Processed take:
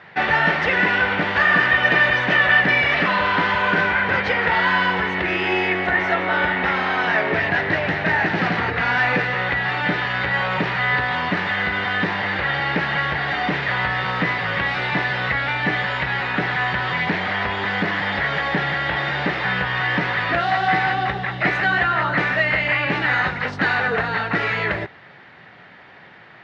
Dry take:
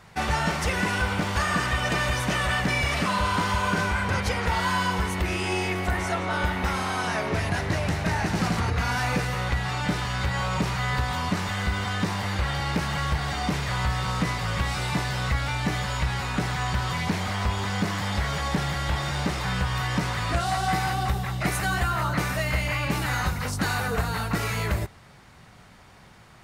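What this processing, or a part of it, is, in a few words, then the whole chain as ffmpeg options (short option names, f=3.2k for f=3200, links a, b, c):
kitchen radio: -af "highpass=200,equalizer=f=220:t=q:w=4:g=-5,equalizer=f=1.1k:t=q:w=4:g=-4,equalizer=f=1.8k:t=q:w=4:g=8,lowpass=f=3.5k:w=0.5412,lowpass=f=3.5k:w=1.3066,volume=7dB"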